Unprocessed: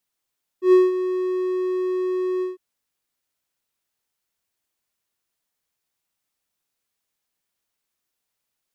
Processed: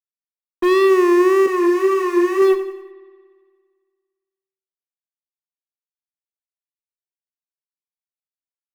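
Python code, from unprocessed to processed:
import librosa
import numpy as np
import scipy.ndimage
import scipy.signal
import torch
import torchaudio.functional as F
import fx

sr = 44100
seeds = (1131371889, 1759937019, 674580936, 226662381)

y = fx.fuzz(x, sr, gain_db=37.0, gate_db=-45.0)
y = scipy.signal.sosfilt(scipy.signal.butter(2, 3700.0, 'lowpass', fs=sr, output='sos'), y)
y = fx.hum_notches(y, sr, base_hz=50, count=7)
y = fx.quant_float(y, sr, bits=4)
y = fx.wow_flutter(y, sr, seeds[0], rate_hz=2.1, depth_cents=89.0)
y = fx.echo_feedback(y, sr, ms=91, feedback_pct=45, wet_db=-13.0)
y = fx.rev_spring(y, sr, rt60_s=1.8, pass_ms=(57,), chirp_ms=45, drr_db=20.0)
y = fx.ensemble(y, sr, at=(1.46, 2.42))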